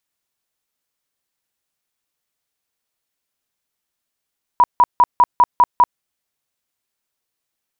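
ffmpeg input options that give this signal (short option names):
-f lavfi -i "aevalsrc='0.447*sin(2*PI*975*mod(t,0.2))*lt(mod(t,0.2),37/975)':d=1.4:s=44100"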